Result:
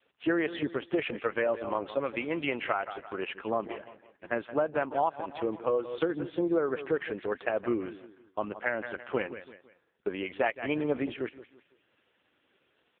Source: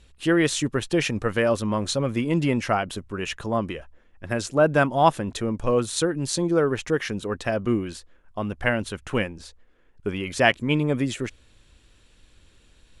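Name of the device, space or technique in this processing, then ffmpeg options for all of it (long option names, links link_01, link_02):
voicemail: -filter_complex "[0:a]adynamicequalizer=threshold=0.00794:dfrequency=200:dqfactor=3:tfrequency=200:tqfactor=3:attack=5:release=100:ratio=0.375:range=3.5:mode=cutabove:tftype=bell,asettb=1/sr,asplit=3[link_01][link_02][link_03];[link_01]atrim=end=2.004[link_04];[link_02]atrim=start=2:end=2.77,asetpts=PTS-STARTPTS,afade=type=in:duration=0.004:curve=qsin,afade=type=out:start_time=0.766:duration=0.004:curve=qsin,tiltshelf=frequency=700:gain=-5.5[link_05];[link_03]atrim=start=2.766[link_06];[link_04][link_05]acrossfade=duration=0.004:curve1=hsin:curve2=qsin[link_07];[link_07][link_06]acrossfade=duration=0.004:curve1=qsin:curve2=hsin,asplit=3[link_08][link_09][link_10];[link_08]afade=type=out:start_time=5.36:duration=0.02[link_11];[link_09]aecho=1:1:6.2:0.37,afade=type=in:start_time=5.36:duration=0.02,afade=type=out:start_time=6.46:duration=0.02[link_12];[link_10]afade=type=in:start_time=6.46:duration=0.02[link_13];[link_11][link_12][link_13]amix=inputs=3:normalize=0,highpass=330,lowpass=2700,aecho=1:1:167|334|501:0.178|0.0676|0.0257,acompressor=threshold=-23dB:ratio=8" -ar 8000 -c:a libopencore_amrnb -b:a 4750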